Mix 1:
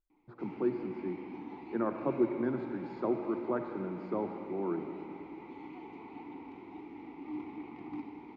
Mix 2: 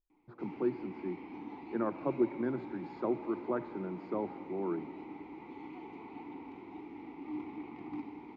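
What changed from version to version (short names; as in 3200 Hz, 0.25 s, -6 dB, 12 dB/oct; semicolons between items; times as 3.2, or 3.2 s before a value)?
speech: send -9.0 dB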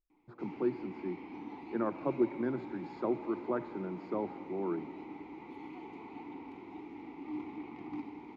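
master: remove air absorption 77 m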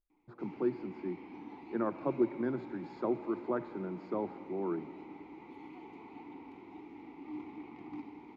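background -3.0 dB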